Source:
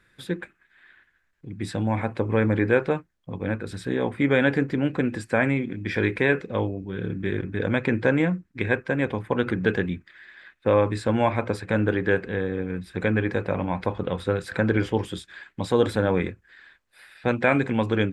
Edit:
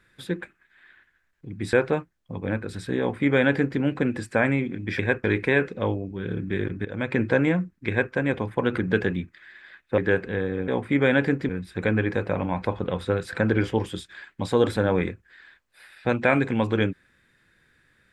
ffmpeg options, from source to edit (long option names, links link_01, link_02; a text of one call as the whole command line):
ffmpeg -i in.wav -filter_complex "[0:a]asplit=8[link_01][link_02][link_03][link_04][link_05][link_06][link_07][link_08];[link_01]atrim=end=1.732[link_09];[link_02]atrim=start=2.708:end=5.972[link_10];[link_03]atrim=start=8.608:end=8.862[link_11];[link_04]atrim=start=5.968:end=7.58,asetpts=PTS-STARTPTS,afade=type=out:start_time=1.608:duration=0.004:curve=hsin:silence=0.16788[link_12];[link_05]atrim=start=7.58:end=10.712,asetpts=PTS-STARTPTS,afade=type=in:duration=0.33:silence=0.16788[link_13];[link_06]atrim=start=11.978:end=12.682[link_14];[link_07]atrim=start=3.968:end=4.782[link_15];[link_08]atrim=start=12.678[link_16];[link_09][link_10]acrossfade=duration=0.004:curve1=hsin:curve2=hsin[link_17];[link_17][link_11]acrossfade=duration=0.004:curve1=hsin:curve2=hsin[link_18];[link_12][link_13]concat=n=2:v=0:a=1[link_19];[link_18][link_19]acrossfade=duration=0.004:curve1=hsin:curve2=hsin[link_20];[link_20][link_14]acrossfade=duration=0.004:curve1=hsin:curve2=hsin[link_21];[link_21][link_15]acrossfade=duration=0.004:curve1=hsin:curve2=hsin[link_22];[link_22][link_16]acrossfade=duration=0.004:curve1=hsin:curve2=hsin" out.wav